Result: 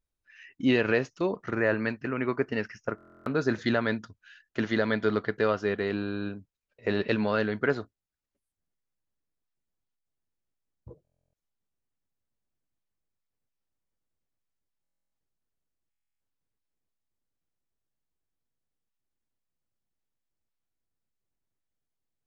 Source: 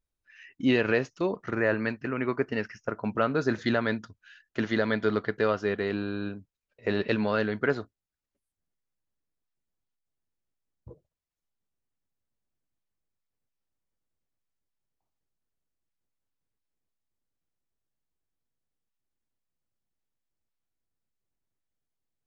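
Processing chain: buffer glitch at 2.96/11.03/14.82/15.90 s, samples 1024, times 12

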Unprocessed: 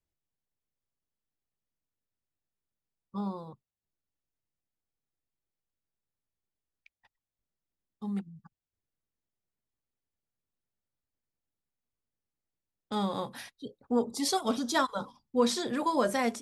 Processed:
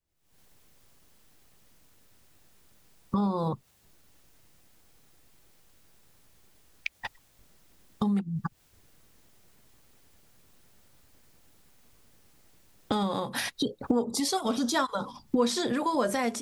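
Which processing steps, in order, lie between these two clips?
recorder AGC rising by 77 dB/s

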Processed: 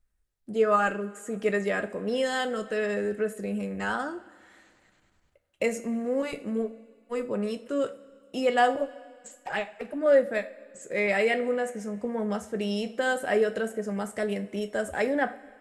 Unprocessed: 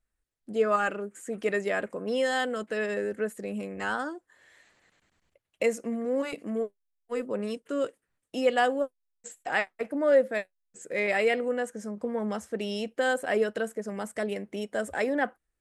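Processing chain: bass shelf 110 Hz +9.5 dB; 8.75–10.06 s: touch-sensitive flanger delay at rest 7.5 ms, full sweep at -23 dBFS; reverberation, pre-delay 3 ms, DRR 7.5 dB

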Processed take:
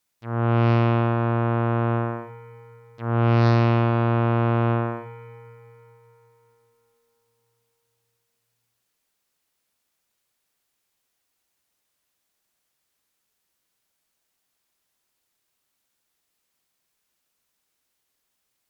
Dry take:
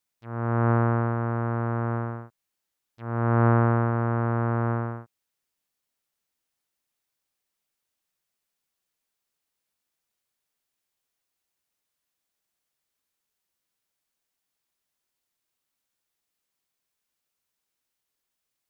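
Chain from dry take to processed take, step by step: Chebyshev shaper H 5 -15 dB, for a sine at -9 dBFS; algorithmic reverb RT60 4.3 s, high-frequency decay 0.55×, pre-delay 15 ms, DRR 9 dB; trim +1 dB

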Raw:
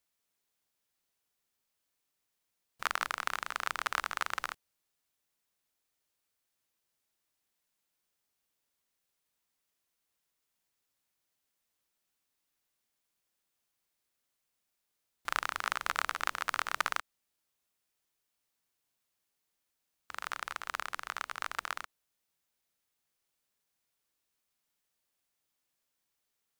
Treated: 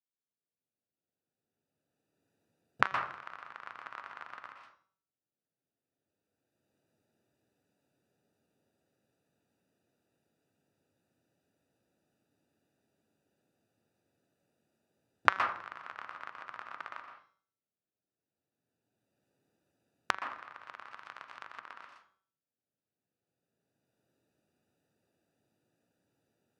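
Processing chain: local Wiener filter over 41 samples; recorder AGC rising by 13 dB/s; high-pass 92 Hz 24 dB/octave; treble shelf 4.6 kHz +5.5 dB; de-hum 190.5 Hz, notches 36; on a send at -4.5 dB: reverberation RT60 0.45 s, pre-delay 115 ms; on the sum: low-pass that closes with the level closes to 2 kHz, closed at -32 dBFS; trim -11.5 dB

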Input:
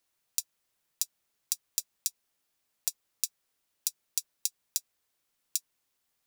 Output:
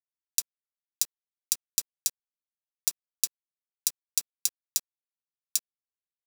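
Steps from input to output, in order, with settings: in parallel at +2 dB: peak limiter -17 dBFS, peak gain reduction 12 dB; on the sum: bit crusher 7-bit; trim +1.5 dB

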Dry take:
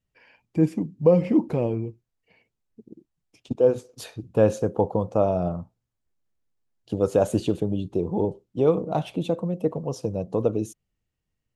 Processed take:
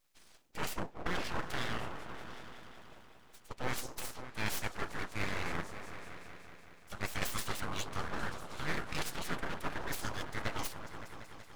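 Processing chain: spectral gate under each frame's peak -20 dB weak; reverse; compression 5:1, threshold -47 dBFS, peak gain reduction 16 dB; reverse; delay with an opening low-pass 188 ms, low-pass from 400 Hz, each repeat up 1 oct, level -6 dB; full-wave rectifier; trim +15.5 dB

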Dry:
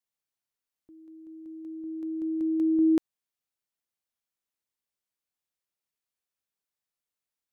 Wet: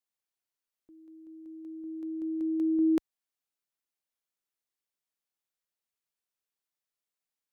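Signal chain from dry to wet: peaking EQ 79 Hz -6.5 dB 2.1 oct; trim -2 dB

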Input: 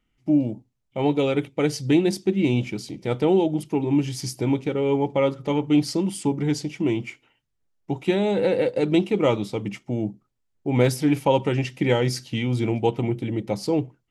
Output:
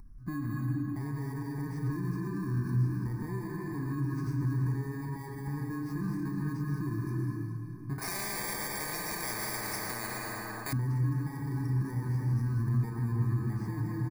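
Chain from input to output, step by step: bit-reversed sample order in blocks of 32 samples; peaking EQ 2.6 kHz -5.5 dB 0.21 oct; hum notches 50/100/150/200/250/300/350 Hz; reverberation RT60 2.3 s, pre-delay 106 ms, DRR 3 dB; compression, threshold -22 dBFS, peak gain reduction 9 dB; doubling 34 ms -10 dB; peak limiter -21.5 dBFS, peak gain reduction 10 dB; RIAA curve playback; feedback delay 212 ms, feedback 48%, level -11.5 dB; upward compressor, threshold -28 dBFS; static phaser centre 1.3 kHz, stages 4; 7.98–10.73 s: spectrum-flattening compressor 10:1; trim -7.5 dB

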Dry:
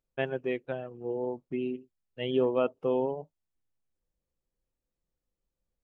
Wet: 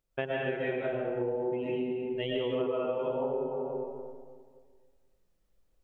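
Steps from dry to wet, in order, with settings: peaking EQ 230 Hz -2.5 dB 0.77 oct; reverberation RT60 1.8 s, pre-delay 85 ms, DRR -7.5 dB; compression 6:1, threshold -32 dBFS, peak gain reduction 16 dB; trim +3 dB

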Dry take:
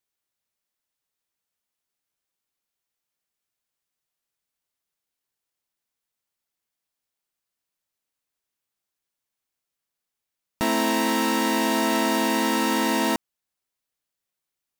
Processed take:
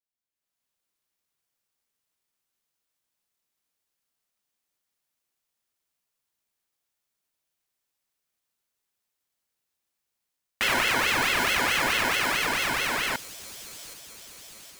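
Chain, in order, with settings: fade out at the end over 3.67 s; level rider gain up to 13 dB; on a send: feedback echo behind a high-pass 775 ms, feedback 62%, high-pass 3.5 kHz, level -7 dB; on the sum: ring modulator with a swept carrier 1.8 kHz, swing 35%, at 4.6 Hz; trim -8.5 dB

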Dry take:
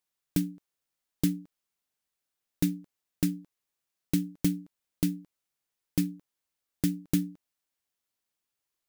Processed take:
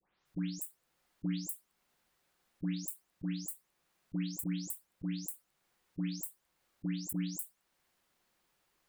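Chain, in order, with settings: delay that grows with frequency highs late, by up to 254 ms; treble shelf 3.6 kHz -11.5 dB; slow attack 682 ms; trim +16.5 dB

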